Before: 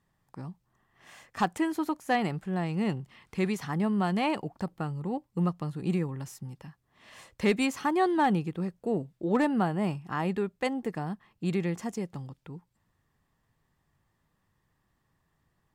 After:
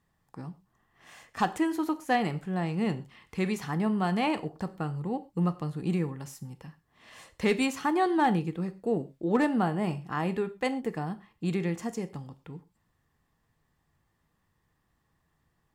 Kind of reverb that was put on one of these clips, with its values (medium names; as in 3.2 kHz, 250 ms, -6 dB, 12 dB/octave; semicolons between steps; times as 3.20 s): gated-style reverb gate 150 ms falling, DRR 10.5 dB